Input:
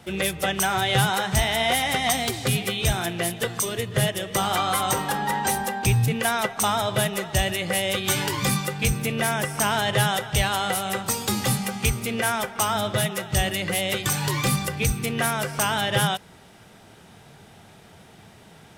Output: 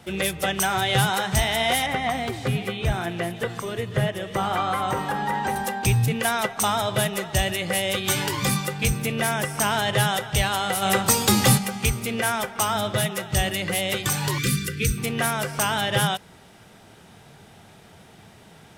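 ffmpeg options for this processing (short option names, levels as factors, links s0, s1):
-filter_complex "[0:a]asettb=1/sr,asplit=3[s0][s1][s2];[s0]atrim=end=1.864[s3];[s1]atrim=start=1.86:end=5.56,asetpts=PTS-STARTPTS,afade=t=in:d=0.004:c=qsin,afade=t=out:st=3.696:d=0.004:c=qsin,acrossover=split=2500[s4][s5];[s5]acompressor=threshold=0.00891:ratio=4:attack=1:release=60[s6];[s4][s6]amix=inputs=2:normalize=0[s7];[s2]atrim=start=5.556[s8];[s3][s7]acrossfade=d=0.004:c1=hsin:c2=qsin[s9];[s9][s8]acrossfade=d=0.004:c1=qsin:c2=hsin,asplit=3[s10][s11][s12];[s10]afade=t=out:st=10.81:d=0.02[s13];[s11]acontrast=68,afade=t=in:st=10.81:d=0.02,afade=t=out:st=11.57:d=0.02[s14];[s12]afade=t=in:st=11.57:d=0.02[s15];[s13][s14][s15]amix=inputs=3:normalize=0,asettb=1/sr,asplit=3[s16][s17][s18];[s16]atrim=end=14.384[s19];[s17]atrim=start=14.38:end=14.98,asetpts=PTS-STARTPTS,afade=t=in:d=0.004:c=qsin,afade=t=out:st=0.596:d=0.004:c=qsin,asuperstop=centerf=790:order=12:qfactor=1[s20];[s18]atrim=start=14.976[s21];[s19][s20]acrossfade=d=0.004:c1=hsin:c2=qsin[s22];[s22][s21]acrossfade=d=0.004:c1=qsin:c2=hsin"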